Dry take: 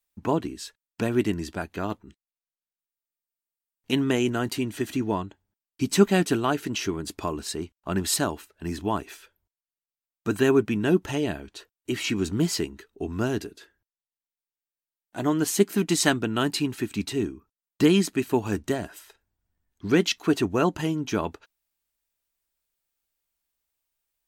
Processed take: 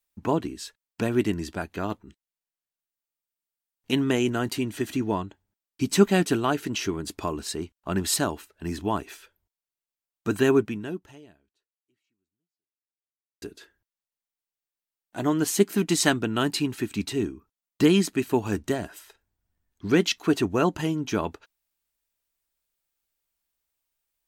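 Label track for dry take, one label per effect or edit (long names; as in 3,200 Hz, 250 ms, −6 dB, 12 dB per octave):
10.570000	13.420000	fade out exponential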